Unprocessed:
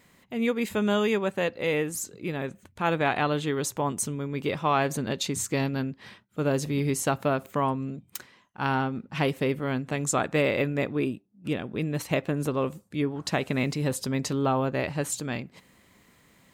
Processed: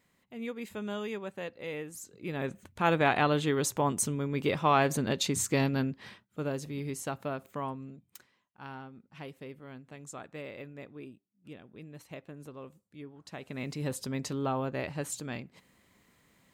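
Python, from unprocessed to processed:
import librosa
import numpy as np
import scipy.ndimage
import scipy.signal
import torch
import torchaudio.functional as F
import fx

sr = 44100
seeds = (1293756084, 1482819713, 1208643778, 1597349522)

y = fx.gain(x, sr, db=fx.line((2.02, -12.0), (2.48, -0.5), (5.99, -0.5), (6.61, -10.0), (7.66, -10.0), (8.8, -18.5), (13.27, -18.5), (13.82, -6.5)))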